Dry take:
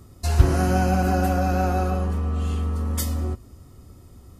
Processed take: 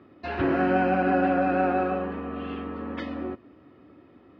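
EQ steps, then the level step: air absorption 180 m; speaker cabinet 260–3500 Hz, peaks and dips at 300 Hz +9 dB, 580 Hz +3 dB, 1700 Hz +7 dB, 2500 Hz +5 dB; 0.0 dB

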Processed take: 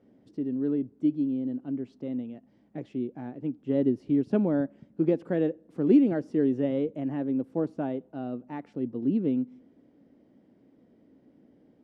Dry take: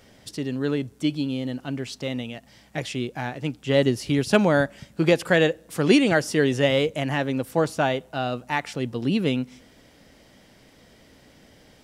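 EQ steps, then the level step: band-pass 280 Hz, Q 2; 0.0 dB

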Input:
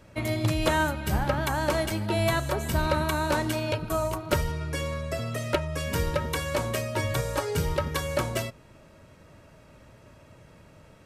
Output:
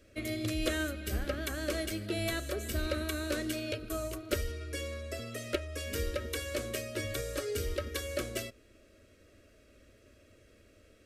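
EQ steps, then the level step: fixed phaser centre 370 Hz, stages 4; -4.0 dB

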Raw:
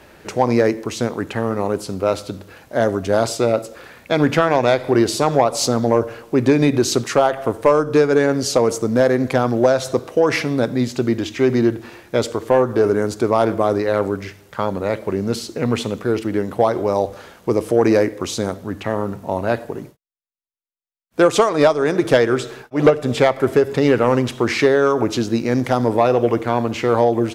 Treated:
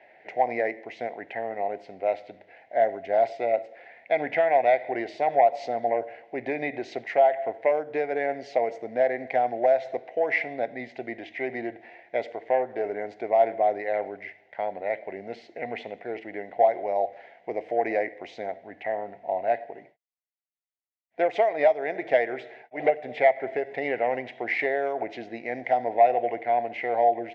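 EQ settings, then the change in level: double band-pass 1200 Hz, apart 1.5 oct; air absorption 160 m; +3.0 dB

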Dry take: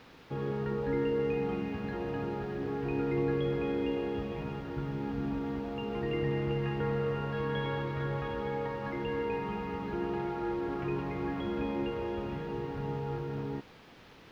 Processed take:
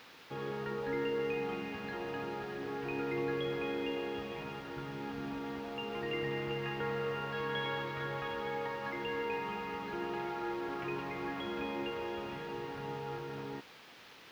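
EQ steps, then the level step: tilt +3.5 dB/oct; high shelf 4200 Hz -6.5 dB; 0.0 dB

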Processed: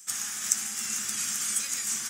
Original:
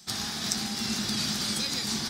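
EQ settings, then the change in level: tilt +2 dB/oct; band shelf 1900 Hz +10 dB; resonant high shelf 5500 Hz +9.5 dB, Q 3; -12.0 dB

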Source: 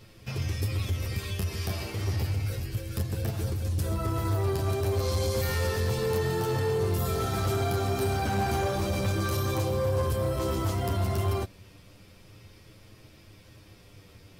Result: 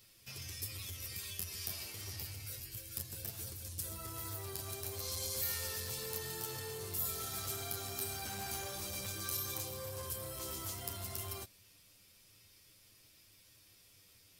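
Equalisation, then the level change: pre-emphasis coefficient 0.9; 0.0 dB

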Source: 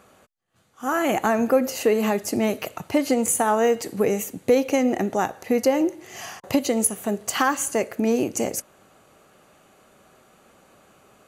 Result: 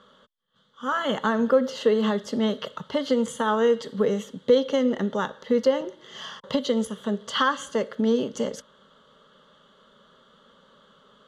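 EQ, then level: synth low-pass 3300 Hz, resonance Q 9.7; fixed phaser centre 490 Hz, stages 8; 0.0 dB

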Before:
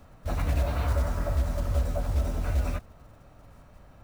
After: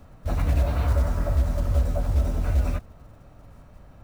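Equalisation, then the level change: low shelf 490 Hz +4.5 dB; 0.0 dB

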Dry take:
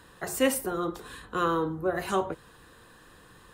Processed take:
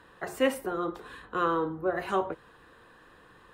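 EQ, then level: tone controls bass -6 dB, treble -13 dB; 0.0 dB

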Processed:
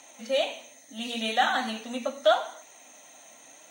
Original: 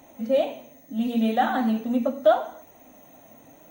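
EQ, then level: weighting filter ITU-R 468; 0.0 dB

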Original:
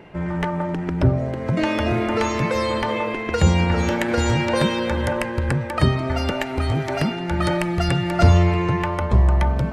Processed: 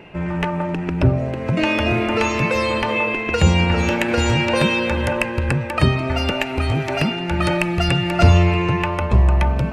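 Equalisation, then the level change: bell 2600 Hz +12 dB 0.21 oct; +1.5 dB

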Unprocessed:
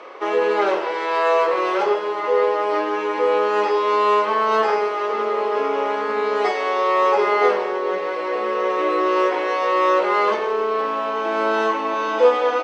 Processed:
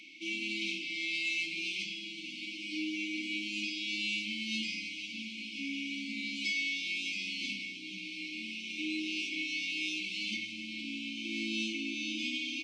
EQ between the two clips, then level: brick-wall FIR band-stop 330–2100 Hz; bell 430 Hz -5 dB 2.4 oct; 0.0 dB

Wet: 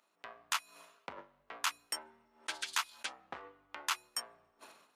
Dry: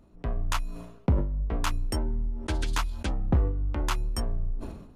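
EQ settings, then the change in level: HPF 1300 Hz 12 dB/oct; 0.0 dB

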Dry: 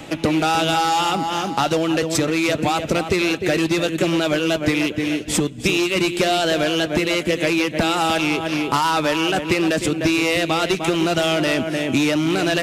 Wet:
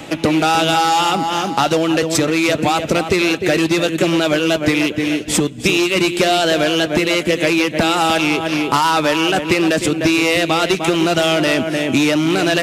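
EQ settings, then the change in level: low shelf 94 Hz -5.5 dB; +4.0 dB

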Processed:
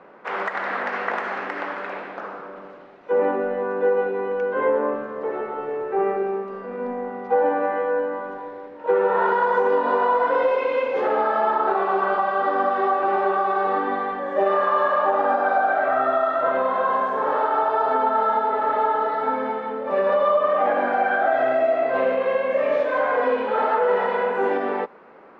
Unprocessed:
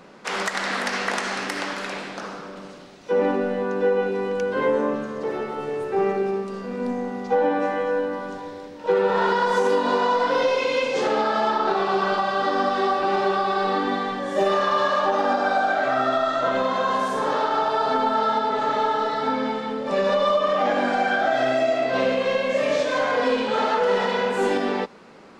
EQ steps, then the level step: air absorption 76 m; three-band isolator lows -13 dB, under 340 Hz, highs -23 dB, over 2200 Hz; +2.5 dB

